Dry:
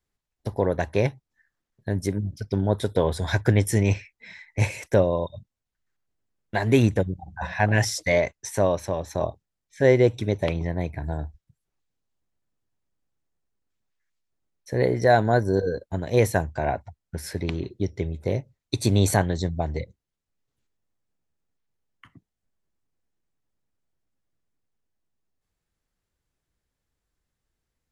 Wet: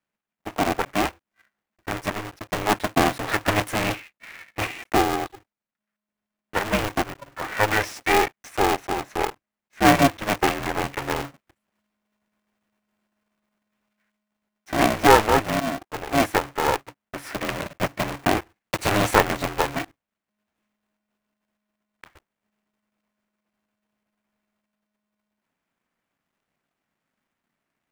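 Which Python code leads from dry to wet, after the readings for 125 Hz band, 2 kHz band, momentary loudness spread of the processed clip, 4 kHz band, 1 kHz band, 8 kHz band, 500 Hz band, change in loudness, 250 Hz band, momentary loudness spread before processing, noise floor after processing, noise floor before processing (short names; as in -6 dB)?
-7.5 dB, +5.5 dB, 14 LU, +7.0 dB, +8.0 dB, +2.5 dB, -2.0 dB, +1.5 dB, +0.5 dB, 13 LU, under -85 dBFS, -84 dBFS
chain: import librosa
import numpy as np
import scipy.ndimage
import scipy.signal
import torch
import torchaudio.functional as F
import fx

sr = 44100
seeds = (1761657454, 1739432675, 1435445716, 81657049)

y = fx.block_float(x, sr, bits=3)
y = fx.band_shelf(y, sr, hz=1100.0, db=12.5, octaves=3.0)
y = fx.rider(y, sr, range_db=10, speed_s=2.0)
y = y * np.sign(np.sin(2.0 * np.pi * 210.0 * np.arange(len(y)) / sr))
y = y * 10.0 ** (-10.0 / 20.0)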